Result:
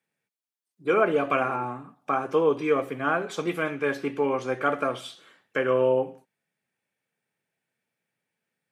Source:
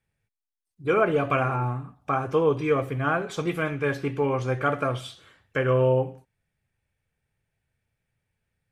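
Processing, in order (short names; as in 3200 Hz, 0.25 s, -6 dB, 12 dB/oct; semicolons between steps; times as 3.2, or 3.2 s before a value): HPF 190 Hz 24 dB/oct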